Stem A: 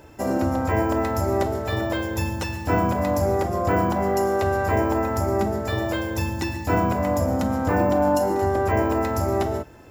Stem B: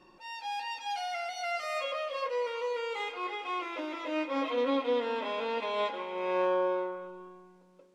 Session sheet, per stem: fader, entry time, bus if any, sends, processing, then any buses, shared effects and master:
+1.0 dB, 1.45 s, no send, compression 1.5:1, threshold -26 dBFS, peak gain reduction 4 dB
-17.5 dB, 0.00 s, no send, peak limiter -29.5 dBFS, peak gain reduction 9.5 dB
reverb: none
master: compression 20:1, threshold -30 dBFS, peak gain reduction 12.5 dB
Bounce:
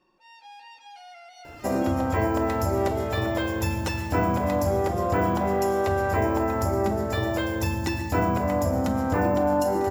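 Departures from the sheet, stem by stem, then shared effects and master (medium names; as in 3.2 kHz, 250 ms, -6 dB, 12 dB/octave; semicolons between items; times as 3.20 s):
stem B -17.5 dB -> -9.0 dB; master: missing compression 20:1, threshold -30 dBFS, peak gain reduction 12.5 dB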